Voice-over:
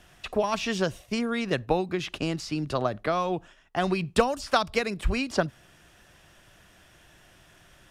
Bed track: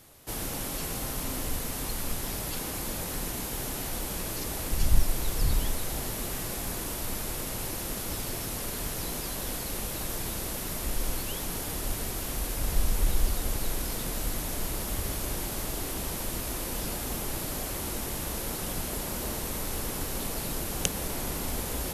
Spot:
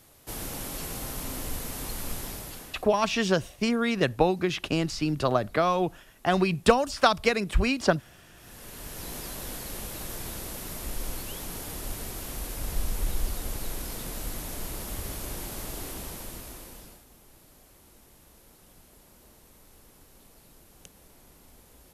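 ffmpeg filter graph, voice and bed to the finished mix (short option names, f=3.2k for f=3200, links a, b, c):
-filter_complex "[0:a]adelay=2500,volume=2.5dB[a];[1:a]volume=20.5dB,afade=t=out:st=2.18:d=0.7:silence=0.0630957,afade=t=in:st=8.35:d=0.82:silence=0.0749894,afade=t=out:st=15.85:d=1.2:silence=0.112202[b];[a][b]amix=inputs=2:normalize=0"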